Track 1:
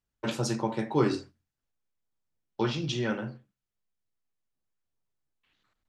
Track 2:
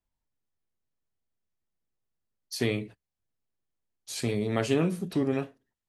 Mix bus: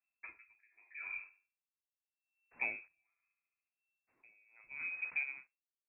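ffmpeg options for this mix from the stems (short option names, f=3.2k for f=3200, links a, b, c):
-filter_complex "[0:a]aecho=1:1:3:0.4,acompressor=threshold=-27dB:ratio=6,volume=-5dB,asplit=2[a][b];[b]volume=-21.5dB[c];[1:a]acrusher=bits=8:dc=4:mix=0:aa=0.000001,volume=-7dB,asplit=2[d][e];[e]apad=whole_len=259700[f];[a][f]sidechaincompress=threshold=-55dB:ratio=4:attack=7.5:release=809[g];[c]aecho=0:1:72|144|216|288|360|432:1|0.44|0.194|0.0852|0.0375|0.0165[h];[g][d][h]amix=inputs=3:normalize=0,lowpass=f=2.3k:t=q:w=0.5098,lowpass=f=2.3k:t=q:w=0.6013,lowpass=f=2.3k:t=q:w=0.9,lowpass=f=2.3k:t=q:w=2.563,afreqshift=-2700,aeval=exprs='val(0)*pow(10,-34*(0.5-0.5*cos(2*PI*0.79*n/s))/20)':c=same"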